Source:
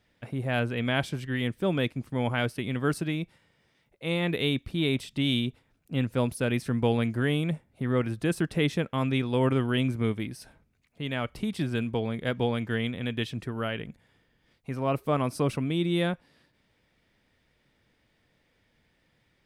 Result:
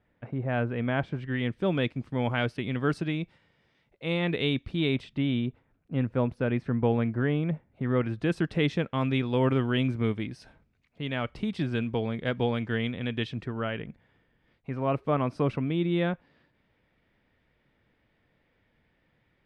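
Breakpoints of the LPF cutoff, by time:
1.06 s 1700 Hz
1.65 s 4400 Hz
4.85 s 4400 Hz
5.28 s 1800 Hz
7.48 s 1800 Hz
8.41 s 4500 Hz
13.22 s 4500 Hz
13.74 s 2700 Hz

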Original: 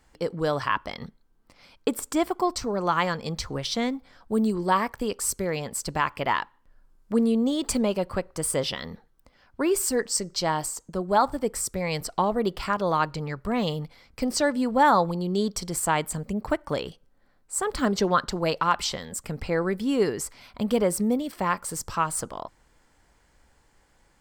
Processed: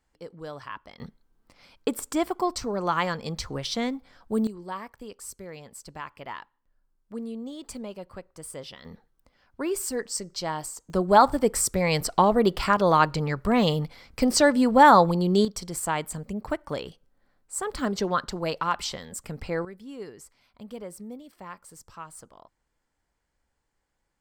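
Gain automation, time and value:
-13 dB
from 1 s -1.5 dB
from 4.47 s -13 dB
from 8.85 s -5 dB
from 10.9 s +4.5 dB
from 15.45 s -3.5 dB
from 19.65 s -16 dB

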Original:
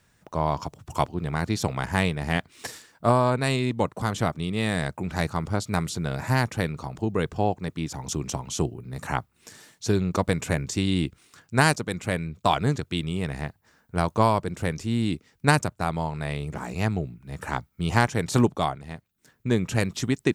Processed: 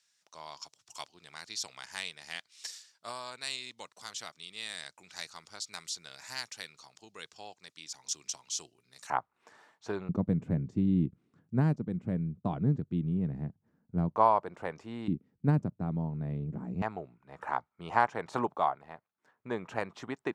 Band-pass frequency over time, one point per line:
band-pass, Q 1.6
5300 Hz
from 9.1 s 930 Hz
from 10.09 s 190 Hz
from 14.16 s 860 Hz
from 15.08 s 200 Hz
from 16.82 s 920 Hz

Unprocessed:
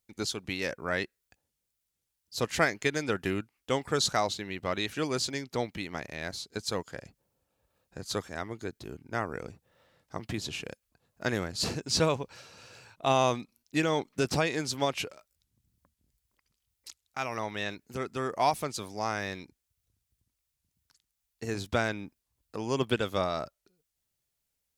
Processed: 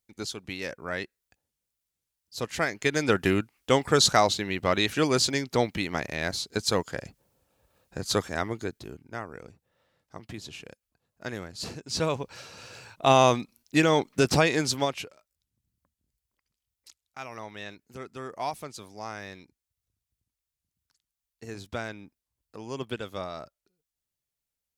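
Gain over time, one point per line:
2.63 s -2 dB
3.08 s +7 dB
8.49 s +7 dB
9.25 s -5.5 dB
11.84 s -5.5 dB
12.42 s +6 dB
14.7 s +6 dB
15.11 s -6 dB

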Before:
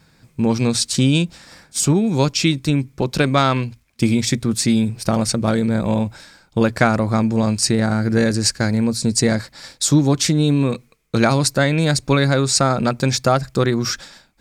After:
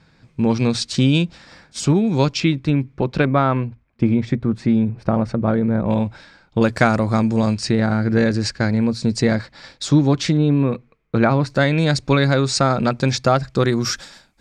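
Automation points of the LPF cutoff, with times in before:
4600 Hz
from 2.4 s 2600 Hz
from 3.25 s 1500 Hz
from 5.9 s 3700 Hz
from 6.62 s 8800 Hz
from 7.54 s 3800 Hz
from 10.37 s 2000 Hz
from 11.5 s 5200 Hz
from 13.63 s 12000 Hz

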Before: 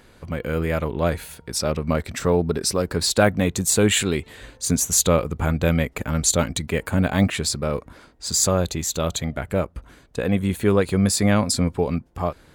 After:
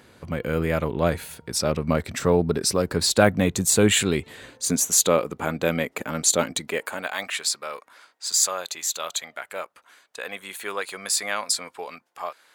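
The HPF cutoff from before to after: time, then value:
4.2 s 88 Hz
4.86 s 260 Hz
6.56 s 260 Hz
7.13 s 980 Hz

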